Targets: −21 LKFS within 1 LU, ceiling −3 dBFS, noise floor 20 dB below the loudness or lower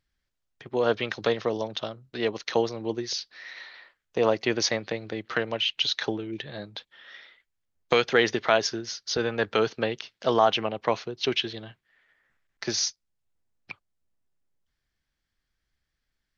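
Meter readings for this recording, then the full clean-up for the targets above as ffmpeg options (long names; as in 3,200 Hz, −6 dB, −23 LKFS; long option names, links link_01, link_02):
integrated loudness −27.0 LKFS; sample peak −4.0 dBFS; target loudness −21.0 LKFS
→ -af "volume=6dB,alimiter=limit=-3dB:level=0:latency=1"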